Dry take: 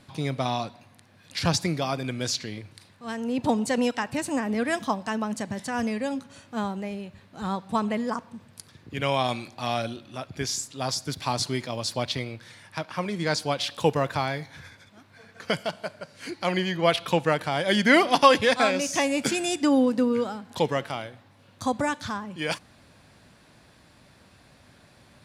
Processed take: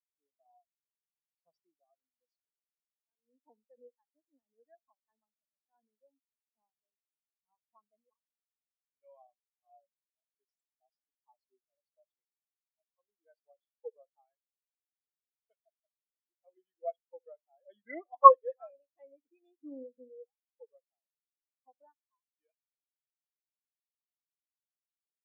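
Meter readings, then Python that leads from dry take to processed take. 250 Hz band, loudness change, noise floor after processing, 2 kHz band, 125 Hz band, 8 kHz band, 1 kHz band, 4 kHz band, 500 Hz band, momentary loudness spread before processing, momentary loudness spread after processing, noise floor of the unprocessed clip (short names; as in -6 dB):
-32.0 dB, +3.5 dB, under -85 dBFS, under -30 dB, under -40 dB, under -40 dB, -3.5 dB, under -40 dB, -12.0 dB, 15 LU, 23 LU, -56 dBFS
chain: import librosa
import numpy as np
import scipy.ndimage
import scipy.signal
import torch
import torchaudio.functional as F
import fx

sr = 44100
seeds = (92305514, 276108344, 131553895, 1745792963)

y = scipy.signal.sosfilt(scipy.signal.butter(2, 360.0, 'highpass', fs=sr, output='sos'), x)
y = fx.room_flutter(y, sr, wall_m=11.8, rt60_s=0.29)
y = fx.spectral_expand(y, sr, expansion=4.0)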